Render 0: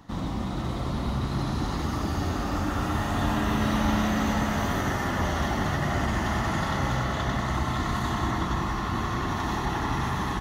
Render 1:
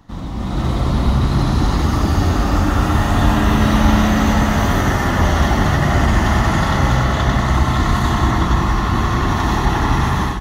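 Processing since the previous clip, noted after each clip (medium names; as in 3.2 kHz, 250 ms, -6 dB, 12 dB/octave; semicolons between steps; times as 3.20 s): level rider gain up to 10 dB; bass shelf 65 Hz +10 dB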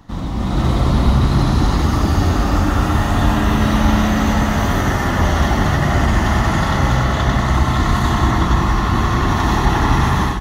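gain riding within 4 dB 2 s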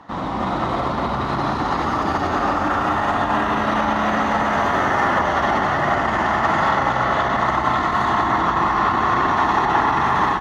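peak limiter -12.5 dBFS, peak gain reduction 11 dB; band-pass filter 1 kHz, Q 0.81; trim +8.5 dB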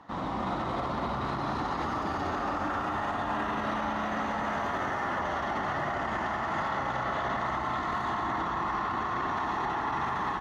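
peak limiter -14.5 dBFS, peak gain reduction 10 dB; trim -8 dB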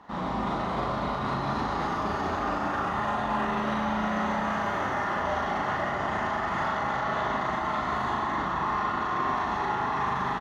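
doubling 38 ms -2 dB; on a send at -9.5 dB: reverberation RT60 0.55 s, pre-delay 5 ms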